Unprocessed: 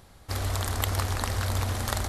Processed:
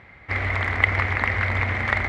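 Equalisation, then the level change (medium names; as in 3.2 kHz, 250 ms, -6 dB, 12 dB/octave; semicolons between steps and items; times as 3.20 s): high-pass 61 Hz; resonant low-pass 2.1 kHz, resonance Q 10; +3.0 dB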